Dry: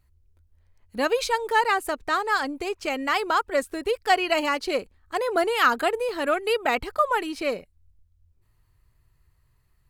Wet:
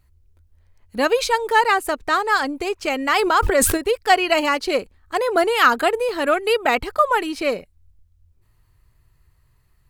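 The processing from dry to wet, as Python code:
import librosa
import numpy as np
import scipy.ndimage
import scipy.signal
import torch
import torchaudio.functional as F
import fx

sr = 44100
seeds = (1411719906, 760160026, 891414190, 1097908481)

y = fx.sustainer(x, sr, db_per_s=23.0, at=(3.14, 3.76), fade=0.02)
y = F.gain(torch.from_numpy(y), 5.0).numpy()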